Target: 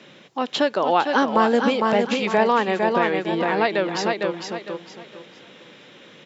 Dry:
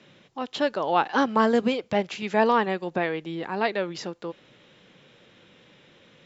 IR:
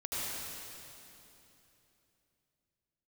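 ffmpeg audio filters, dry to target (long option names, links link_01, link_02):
-filter_complex "[0:a]highpass=180,asplit=2[link_01][link_02];[link_02]aecho=0:1:455|910|1365|1820:0.531|0.143|0.0387|0.0104[link_03];[link_01][link_03]amix=inputs=2:normalize=0,acompressor=threshold=-26dB:ratio=2,volume=8dB"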